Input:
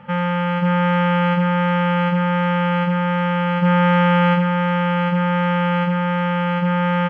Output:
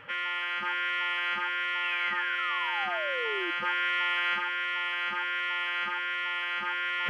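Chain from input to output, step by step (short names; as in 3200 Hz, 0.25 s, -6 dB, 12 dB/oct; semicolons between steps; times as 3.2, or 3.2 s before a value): HPF 250 Hz 6 dB/oct; spectral gate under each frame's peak -10 dB weak; reverse; upward compressor, threshold -25 dBFS; reverse; painted sound fall, 1.83–3.51, 330–2800 Hz -35 dBFS; gain -1.5 dB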